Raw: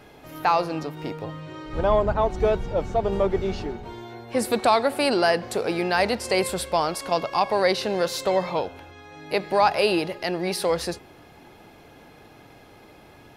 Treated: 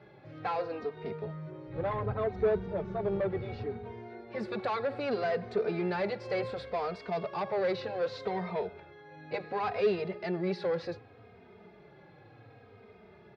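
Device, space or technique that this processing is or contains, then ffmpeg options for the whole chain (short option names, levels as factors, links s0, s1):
barber-pole flanger into a guitar amplifier: -filter_complex "[0:a]asplit=2[s0][s1];[s1]adelay=3,afreqshift=-0.67[s2];[s0][s2]amix=inputs=2:normalize=1,asoftclip=type=tanh:threshold=0.0794,highpass=82,equalizer=f=110:t=q:w=4:g=9,equalizer=f=190:t=q:w=4:g=5,equalizer=f=290:t=q:w=4:g=-7,equalizer=f=420:t=q:w=4:g=7,equalizer=f=940:t=q:w=4:g=-4,equalizer=f=3000:t=q:w=4:g=-9,lowpass=f=3700:w=0.5412,lowpass=f=3700:w=1.3066,volume=0.631"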